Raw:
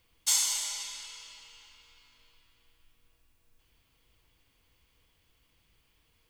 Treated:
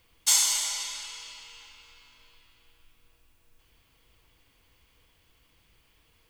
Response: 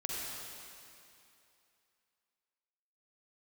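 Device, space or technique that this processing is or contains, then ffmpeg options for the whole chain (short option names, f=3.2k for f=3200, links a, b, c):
filtered reverb send: -filter_complex "[0:a]asplit=2[a][b];[b]highpass=260,lowpass=3.3k[c];[1:a]atrim=start_sample=2205[d];[c][d]afir=irnorm=-1:irlink=0,volume=-13dB[e];[a][e]amix=inputs=2:normalize=0,volume=4.5dB"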